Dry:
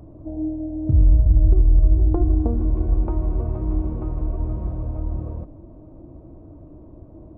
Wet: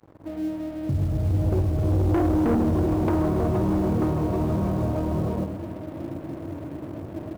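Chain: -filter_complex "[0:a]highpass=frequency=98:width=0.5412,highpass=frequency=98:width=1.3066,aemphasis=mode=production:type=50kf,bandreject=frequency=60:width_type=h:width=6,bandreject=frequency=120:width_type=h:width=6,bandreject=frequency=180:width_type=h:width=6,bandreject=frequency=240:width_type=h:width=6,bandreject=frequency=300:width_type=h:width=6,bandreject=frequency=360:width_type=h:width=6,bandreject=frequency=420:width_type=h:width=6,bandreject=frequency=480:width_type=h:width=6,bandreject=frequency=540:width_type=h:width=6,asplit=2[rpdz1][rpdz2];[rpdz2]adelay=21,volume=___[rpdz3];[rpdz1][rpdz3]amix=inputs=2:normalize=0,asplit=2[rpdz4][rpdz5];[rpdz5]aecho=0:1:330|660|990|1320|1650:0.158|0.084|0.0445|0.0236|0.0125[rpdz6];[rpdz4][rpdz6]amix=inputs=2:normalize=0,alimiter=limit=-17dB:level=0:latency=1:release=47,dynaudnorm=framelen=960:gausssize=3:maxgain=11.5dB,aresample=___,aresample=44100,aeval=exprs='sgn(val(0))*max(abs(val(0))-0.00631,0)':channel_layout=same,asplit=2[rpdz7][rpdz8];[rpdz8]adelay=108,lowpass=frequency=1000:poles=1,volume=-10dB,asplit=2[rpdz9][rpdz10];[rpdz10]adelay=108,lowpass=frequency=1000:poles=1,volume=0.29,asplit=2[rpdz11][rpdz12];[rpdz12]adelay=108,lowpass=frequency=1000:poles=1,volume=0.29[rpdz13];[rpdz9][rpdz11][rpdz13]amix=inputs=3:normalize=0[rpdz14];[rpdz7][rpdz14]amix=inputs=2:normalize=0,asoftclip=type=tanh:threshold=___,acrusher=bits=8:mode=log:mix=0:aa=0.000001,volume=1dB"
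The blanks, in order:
-13dB, 11025, -18.5dB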